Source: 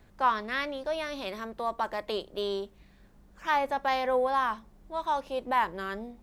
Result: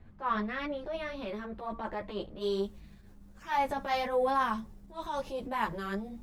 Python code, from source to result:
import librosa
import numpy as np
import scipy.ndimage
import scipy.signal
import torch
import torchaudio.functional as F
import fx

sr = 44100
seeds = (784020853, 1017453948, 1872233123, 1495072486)

y = fx.bass_treble(x, sr, bass_db=9, treble_db=fx.steps((0.0, -13.0), (2.4, 4.0)))
y = fx.transient(y, sr, attack_db=-9, sustain_db=4)
y = fx.ensemble(y, sr)